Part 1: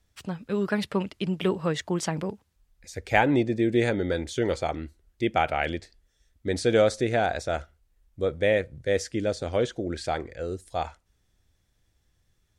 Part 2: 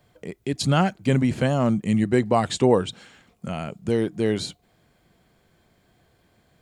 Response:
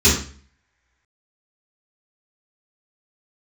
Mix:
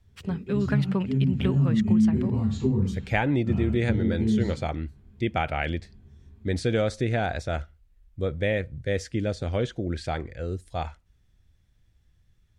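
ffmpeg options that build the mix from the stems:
-filter_complex "[0:a]highshelf=frequency=2400:gain=11.5,volume=-4dB[link_01];[1:a]equalizer=frequency=900:width_type=o:width=0.77:gain=3.5,acrossover=split=220|3000[link_02][link_03][link_04];[link_03]acompressor=threshold=-28dB:ratio=6[link_05];[link_02][link_05][link_04]amix=inputs=3:normalize=0,volume=-15.5dB,afade=type=in:start_time=1.32:duration=0.28:silence=0.446684,asplit=2[link_06][link_07];[link_07]volume=-14.5dB[link_08];[2:a]atrim=start_sample=2205[link_09];[link_08][link_09]afir=irnorm=-1:irlink=0[link_10];[link_01][link_06][link_10]amix=inputs=3:normalize=0,bass=frequency=250:gain=11,treble=frequency=4000:gain=-13,acompressor=threshold=-20dB:ratio=3"

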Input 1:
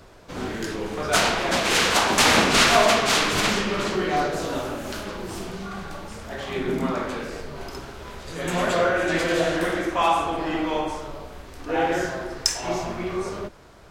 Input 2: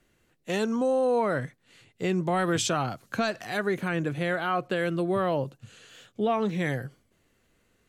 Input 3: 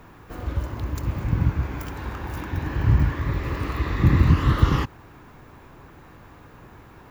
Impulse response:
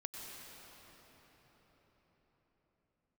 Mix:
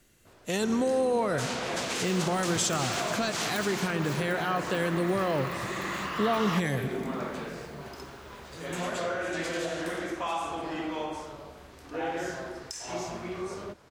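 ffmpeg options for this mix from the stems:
-filter_complex "[0:a]adynamicequalizer=threshold=0.0112:dfrequency=7100:dqfactor=1:tfrequency=7100:tqfactor=1:attack=5:release=100:ratio=0.375:range=3:mode=boostabove:tftype=bell,acompressor=threshold=-23dB:ratio=2,highpass=66,adelay=250,volume=-7dB[link_01];[1:a]bass=frequency=250:gain=2,treble=frequency=4000:gain=9,volume=0.5dB,asplit=2[link_02][link_03];[link_03]volume=-9.5dB[link_04];[2:a]highpass=790,adelay=1750,volume=-2dB[link_05];[link_01][link_02]amix=inputs=2:normalize=0,alimiter=limit=-21dB:level=0:latency=1:release=174,volume=0dB[link_06];[3:a]atrim=start_sample=2205[link_07];[link_04][link_07]afir=irnorm=-1:irlink=0[link_08];[link_05][link_06][link_08]amix=inputs=3:normalize=0"

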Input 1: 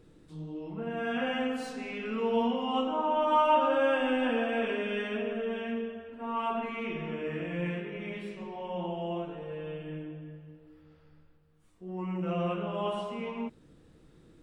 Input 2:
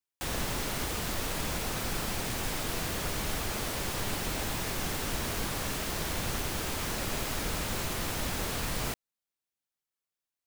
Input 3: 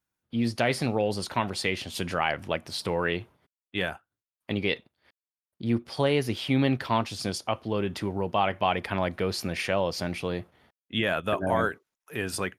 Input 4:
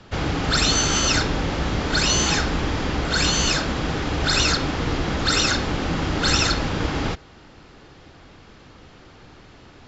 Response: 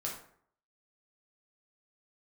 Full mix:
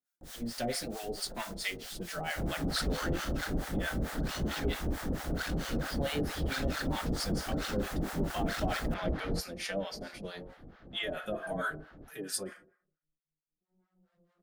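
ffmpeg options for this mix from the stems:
-filter_complex "[0:a]lowpass=1700,alimiter=level_in=1dB:limit=-24dB:level=0:latency=1,volume=-1dB,asoftclip=type=hard:threshold=-37.5dB,adelay=1800,volume=-4dB,asplit=2[link_01][link_02];[link_02]volume=-24dB[link_03];[1:a]volume=-7.5dB[link_04];[2:a]highpass=frequency=400:poles=1,asplit=2[link_05][link_06];[link_06]adelay=5,afreqshift=-1.7[link_07];[link_05][link_07]amix=inputs=2:normalize=1,volume=1dB,asplit=3[link_08][link_09][link_10];[link_09]volume=-4.5dB[link_11];[3:a]lowpass=1800,asoftclip=type=tanh:threshold=-26.5dB,adelay=2250,volume=2.5dB[link_12];[link_10]apad=whole_len=715709[link_13];[link_01][link_13]sidechaingate=range=-33dB:threshold=-54dB:ratio=16:detection=peak[link_14];[4:a]atrim=start_sample=2205[link_15];[link_03][link_11]amix=inputs=2:normalize=0[link_16];[link_16][link_15]afir=irnorm=-1:irlink=0[link_17];[link_14][link_04][link_08][link_12][link_17]amix=inputs=5:normalize=0,equalizer=frequency=100:width_type=o:width=0.67:gain=-8,equalizer=frequency=400:width_type=o:width=0.67:gain=-5,equalizer=frequency=1000:width_type=o:width=0.67:gain=-10,equalizer=frequency=2500:width_type=o:width=0.67:gain=-8,acrossover=split=700[link_18][link_19];[link_18]aeval=exprs='val(0)*(1-1/2+1/2*cos(2*PI*4.5*n/s))':channel_layout=same[link_20];[link_19]aeval=exprs='val(0)*(1-1/2-1/2*cos(2*PI*4.5*n/s))':channel_layout=same[link_21];[link_20][link_21]amix=inputs=2:normalize=0"

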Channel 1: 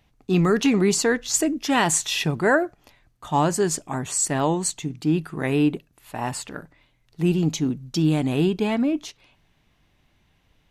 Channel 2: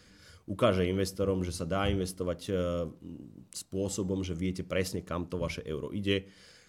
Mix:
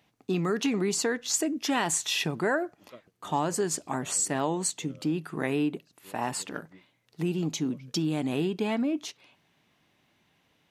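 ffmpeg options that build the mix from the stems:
ffmpeg -i stem1.wav -i stem2.wav -filter_complex "[0:a]acompressor=threshold=-24dB:ratio=3,volume=-1dB,asplit=2[link_01][link_02];[1:a]acrossover=split=550[link_03][link_04];[link_03]aeval=exprs='val(0)*(1-0.7/2+0.7/2*cos(2*PI*9*n/s))':channel_layout=same[link_05];[link_04]aeval=exprs='val(0)*(1-0.7/2-0.7/2*cos(2*PI*9*n/s))':channel_layout=same[link_06];[link_05][link_06]amix=inputs=2:normalize=0,lowpass=frequency=5600:width=0.5412,lowpass=frequency=5600:width=1.3066,adelay=2300,volume=-18dB[link_07];[link_02]apad=whole_len=396443[link_08];[link_07][link_08]sidechaingate=range=-33dB:threshold=-56dB:ratio=16:detection=peak[link_09];[link_01][link_09]amix=inputs=2:normalize=0,highpass=170" out.wav

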